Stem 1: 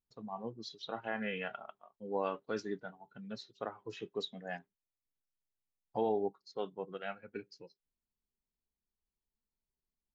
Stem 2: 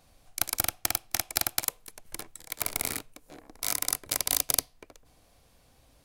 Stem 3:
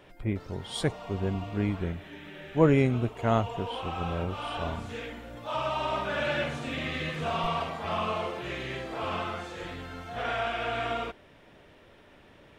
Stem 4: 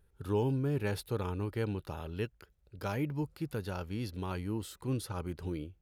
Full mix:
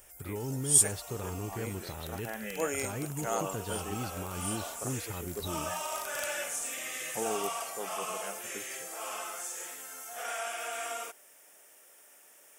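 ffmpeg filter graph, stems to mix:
-filter_complex "[0:a]adelay=1200,volume=-2.5dB[a];[1:a]adelay=1650,volume=-15dB[b];[2:a]highpass=600,bandreject=f=1k:w=9.4,aexciter=amount=14.7:drive=8.7:freq=6.2k,volume=-5dB[c];[3:a]alimiter=level_in=5dB:limit=-24dB:level=0:latency=1,volume=-5dB,volume=-0.5dB,asplit=2[d][e];[e]apad=whole_len=339292[f];[b][f]sidechaincompress=threshold=-43dB:ratio=8:attack=16:release=1280[g];[a][g][c][d]amix=inputs=4:normalize=0"

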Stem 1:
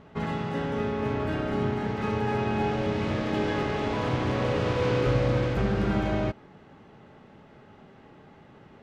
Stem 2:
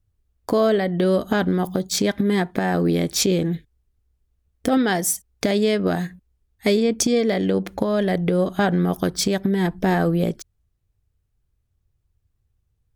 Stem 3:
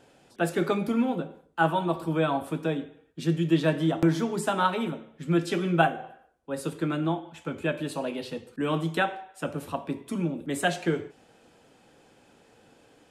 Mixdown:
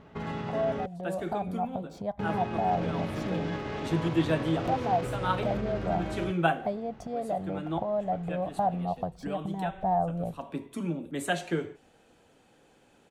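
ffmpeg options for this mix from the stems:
-filter_complex "[0:a]alimiter=level_in=1dB:limit=-24dB:level=0:latency=1:release=63,volume=-1dB,volume=-1.5dB,asplit=3[a][b][c];[a]atrim=end=0.86,asetpts=PTS-STARTPTS,afade=t=out:st=0.856:d=0.004:c=hsin[d];[b]atrim=start=0.86:end=2.19,asetpts=PTS-STARTPTS,volume=0[e];[c]atrim=start=2.19,asetpts=PTS-STARTPTS,afade=t=in:d=0.004:c=hsin[f];[d][e][f]concat=n=3:v=0:a=1[g];[1:a]firequalizer=gain_entry='entry(120,0);entry(320,-21);entry(710,8);entry(1500,-20);entry(6100,-28)':delay=0.05:min_phase=1,dynaudnorm=f=210:g=13:m=7dB,volume=-12.5dB,asplit=2[h][i];[2:a]bandreject=f=5.1k:w=12,adelay=650,volume=-3.5dB[j];[i]apad=whole_len=606597[k];[j][k]sidechaincompress=threshold=-38dB:ratio=8:attack=12:release=310[l];[g][h][l]amix=inputs=3:normalize=0"

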